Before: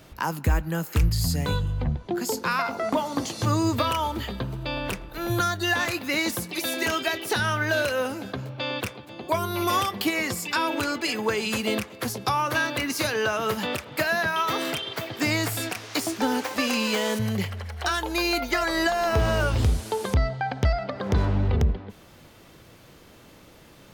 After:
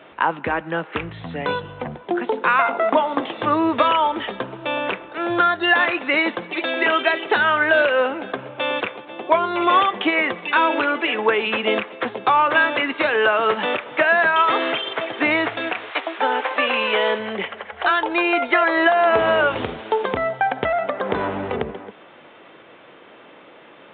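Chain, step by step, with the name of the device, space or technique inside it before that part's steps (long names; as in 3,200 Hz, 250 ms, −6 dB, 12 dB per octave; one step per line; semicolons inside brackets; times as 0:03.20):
0:15.90–0:17.71: high-pass filter 630 Hz → 160 Hz 12 dB per octave
telephone (band-pass filter 380–3,000 Hz; level +9 dB; A-law companding 64 kbit/s 8,000 Hz)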